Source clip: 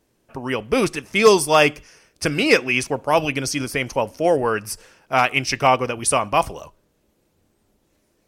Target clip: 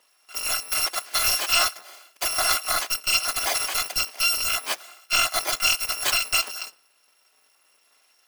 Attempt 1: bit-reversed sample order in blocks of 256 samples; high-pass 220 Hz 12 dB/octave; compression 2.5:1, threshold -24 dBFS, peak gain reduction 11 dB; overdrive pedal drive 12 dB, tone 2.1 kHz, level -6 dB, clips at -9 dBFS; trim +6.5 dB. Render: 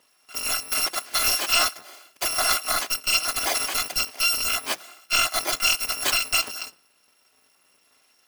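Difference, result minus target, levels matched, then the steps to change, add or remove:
250 Hz band +5.0 dB
change: high-pass 470 Hz 12 dB/octave

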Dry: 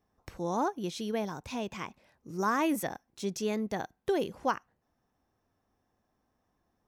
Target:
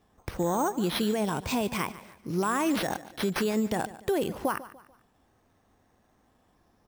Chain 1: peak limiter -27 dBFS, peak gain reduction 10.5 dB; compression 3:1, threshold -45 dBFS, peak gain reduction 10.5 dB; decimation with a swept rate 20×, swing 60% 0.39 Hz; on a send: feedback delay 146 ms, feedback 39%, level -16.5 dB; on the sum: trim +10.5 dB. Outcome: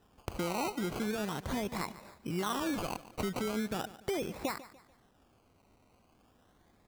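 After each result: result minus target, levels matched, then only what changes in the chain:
compression: peak gain reduction +7.5 dB; decimation with a swept rate: distortion +9 dB
change: compression 3:1, threshold -34 dBFS, peak gain reduction 3.5 dB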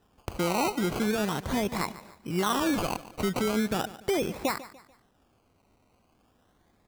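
decimation with a swept rate: distortion +9 dB
change: decimation with a swept rate 5×, swing 60% 0.39 Hz

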